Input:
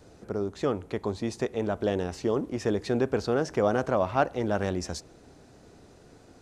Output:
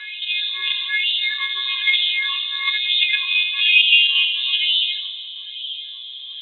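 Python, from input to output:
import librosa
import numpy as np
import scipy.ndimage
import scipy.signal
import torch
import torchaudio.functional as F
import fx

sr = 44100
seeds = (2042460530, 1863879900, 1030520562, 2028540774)

p1 = fx.freq_snap(x, sr, grid_st=4)
p2 = fx.peak_eq(p1, sr, hz=3000.0, db=7.5, octaves=0.33, at=(1.57, 3.29))
p3 = fx.echo_tape(p2, sr, ms=79, feedback_pct=55, wet_db=-3.0, lp_hz=1300.0, drive_db=7.0, wow_cents=36)
p4 = fx.level_steps(p3, sr, step_db=23)
p5 = p3 + F.gain(torch.from_numpy(p4), 2.0).numpy()
p6 = fx.peak_eq(p5, sr, hz=240.0, db=5.5, octaves=0.52)
p7 = p6 + fx.echo_single(p6, sr, ms=287, db=-15.0, dry=0)
p8 = fx.filter_sweep_lowpass(p7, sr, from_hz=1900.0, to_hz=710.0, start_s=2.36, end_s=5.95, q=4.6)
p9 = fx.freq_invert(p8, sr, carrier_hz=3900)
p10 = fx.filter_lfo_highpass(p9, sr, shape='sine', hz=1.1, low_hz=660.0, high_hz=3000.0, q=7.0)
p11 = fx.env_flatten(p10, sr, amount_pct=50)
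y = F.gain(torch.from_numpy(p11), -14.5).numpy()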